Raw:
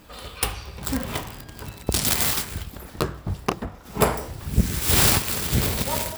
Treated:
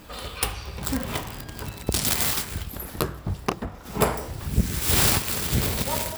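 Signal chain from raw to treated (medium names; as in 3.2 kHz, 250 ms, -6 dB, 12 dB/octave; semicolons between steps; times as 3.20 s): 2.69–3.19 s: peaking EQ 12 kHz +9 dB 0.54 oct; in parallel at +2 dB: compression, threshold -34 dBFS, peak gain reduction 20 dB; on the sum: trim -3.5 dB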